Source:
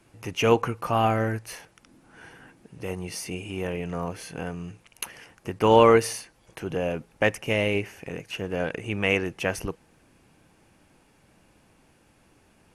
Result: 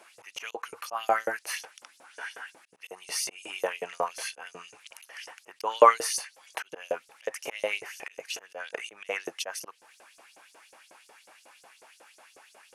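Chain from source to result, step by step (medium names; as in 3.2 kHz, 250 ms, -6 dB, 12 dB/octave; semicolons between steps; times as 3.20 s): dynamic bell 2.6 kHz, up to -6 dB, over -42 dBFS, Q 1.8; slow attack 266 ms; in parallel at +1 dB: compression, threshold -39 dBFS, peak gain reduction 23.5 dB; on the sum: LFO high-pass saw up 5.5 Hz 480–7200 Hz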